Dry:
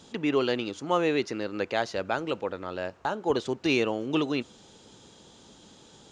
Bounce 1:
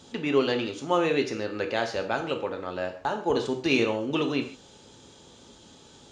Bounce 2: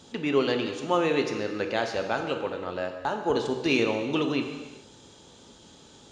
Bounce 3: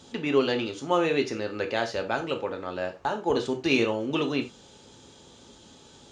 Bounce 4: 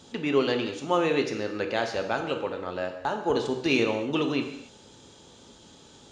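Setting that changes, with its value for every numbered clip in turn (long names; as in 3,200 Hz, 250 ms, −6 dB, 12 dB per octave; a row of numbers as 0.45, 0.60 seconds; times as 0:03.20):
reverb whose tail is shaped and stops, gate: 180, 460, 120, 310 milliseconds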